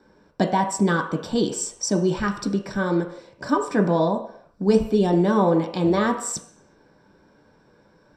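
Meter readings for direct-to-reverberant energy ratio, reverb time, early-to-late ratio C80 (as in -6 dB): 2.5 dB, not exponential, 11.5 dB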